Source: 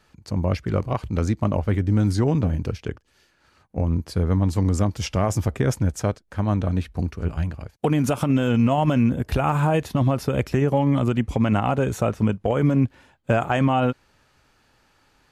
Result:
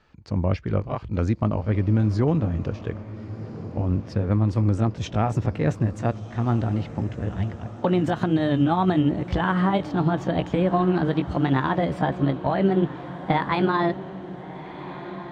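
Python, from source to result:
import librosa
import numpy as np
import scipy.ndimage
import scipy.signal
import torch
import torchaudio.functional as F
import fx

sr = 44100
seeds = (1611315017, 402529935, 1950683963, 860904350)

y = fx.pitch_glide(x, sr, semitones=6.0, runs='starting unshifted')
y = fx.air_absorb(y, sr, metres=150.0)
y = fx.echo_diffused(y, sr, ms=1402, feedback_pct=54, wet_db=-14.0)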